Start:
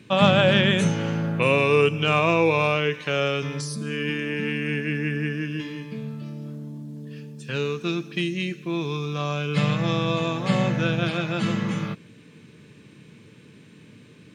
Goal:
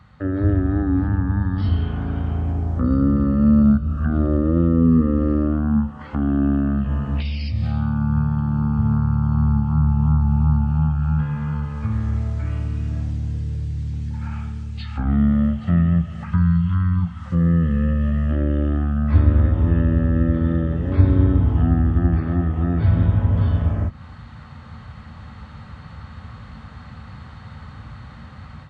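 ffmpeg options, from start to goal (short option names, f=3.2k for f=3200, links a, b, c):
-filter_complex "[0:a]dynaudnorm=f=530:g=3:m=11.5dB,asetrate=22050,aresample=44100,acrossover=split=390[a][b];[b]acompressor=threshold=-37dB:ratio=6[c];[a][c]amix=inputs=2:normalize=0"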